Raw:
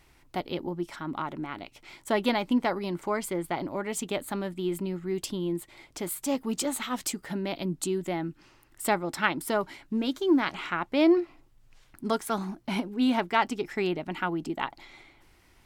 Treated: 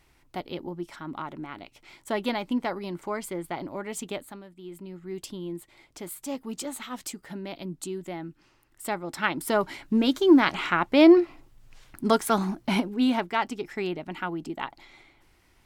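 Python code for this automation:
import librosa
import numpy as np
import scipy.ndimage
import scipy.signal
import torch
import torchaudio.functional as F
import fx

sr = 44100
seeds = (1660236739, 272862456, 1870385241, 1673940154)

y = fx.gain(x, sr, db=fx.line((4.13, -2.5), (4.47, -15.0), (5.14, -5.0), (8.89, -5.0), (9.78, 6.0), (12.67, 6.0), (13.34, -2.0)))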